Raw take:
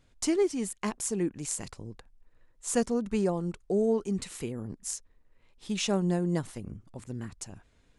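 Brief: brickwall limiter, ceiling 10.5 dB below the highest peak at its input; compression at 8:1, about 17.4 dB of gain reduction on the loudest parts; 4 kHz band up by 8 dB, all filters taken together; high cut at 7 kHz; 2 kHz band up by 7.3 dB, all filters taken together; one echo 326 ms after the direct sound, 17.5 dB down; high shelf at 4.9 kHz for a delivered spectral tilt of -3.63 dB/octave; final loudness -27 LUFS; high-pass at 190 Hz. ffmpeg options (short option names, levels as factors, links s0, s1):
-af "highpass=190,lowpass=7000,equalizer=f=2000:t=o:g=6,equalizer=f=4000:t=o:g=5.5,highshelf=f=4900:g=7.5,acompressor=threshold=0.01:ratio=8,alimiter=level_in=2.99:limit=0.0631:level=0:latency=1,volume=0.335,aecho=1:1:326:0.133,volume=8.41"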